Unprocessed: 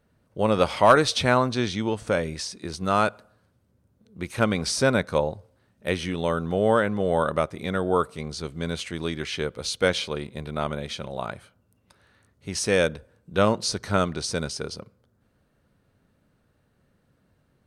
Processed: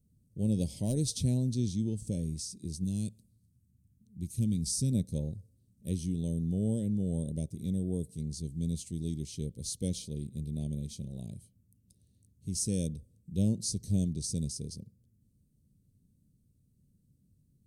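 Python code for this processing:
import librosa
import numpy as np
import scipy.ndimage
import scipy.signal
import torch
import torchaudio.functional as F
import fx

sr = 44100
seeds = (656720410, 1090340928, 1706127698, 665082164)

y = fx.peak_eq(x, sr, hz=700.0, db=-13.5, octaves=1.4, at=(2.84, 4.92))
y = scipy.signal.sosfilt(scipy.signal.cheby1(2, 1.0, [180.0, 8300.0], 'bandstop', fs=sr, output='sos'), y)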